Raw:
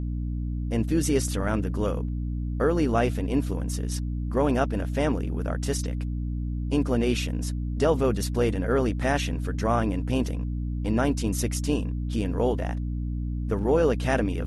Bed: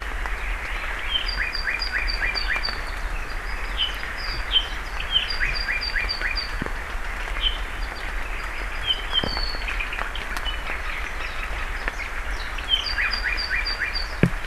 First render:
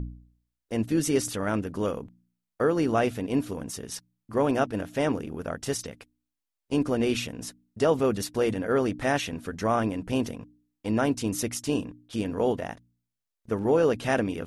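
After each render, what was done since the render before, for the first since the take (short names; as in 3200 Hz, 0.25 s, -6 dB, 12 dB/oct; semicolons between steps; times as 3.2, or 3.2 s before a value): de-hum 60 Hz, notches 5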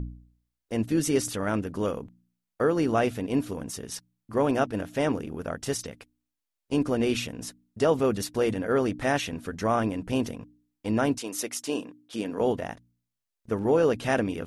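11.17–12.39 HPF 470 Hz -> 200 Hz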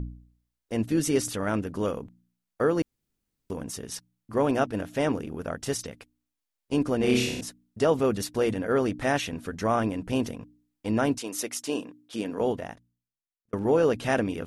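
2.82–3.5 room tone; 6.98–7.41 flutter echo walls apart 5.5 m, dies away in 0.72 s; 12.29–13.53 fade out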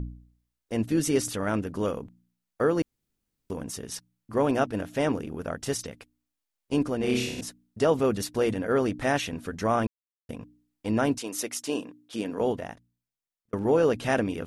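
6.88–7.38 gain -3 dB; 9.87–10.29 mute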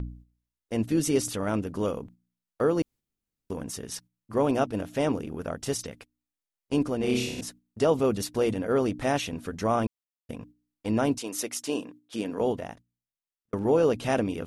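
gate -48 dBFS, range -7 dB; dynamic EQ 1700 Hz, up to -6 dB, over -46 dBFS, Q 2.4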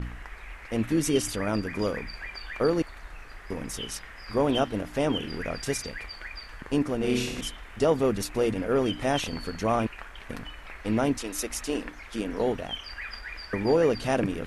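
add bed -14.5 dB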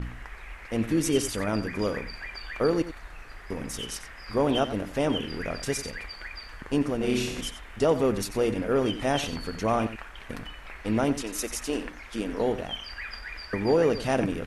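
echo 91 ms -13 dB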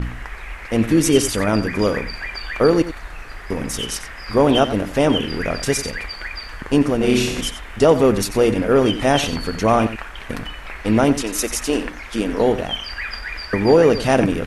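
gain +9.5 dB; limiter -2 dBFS, peak gain reduction 1 dB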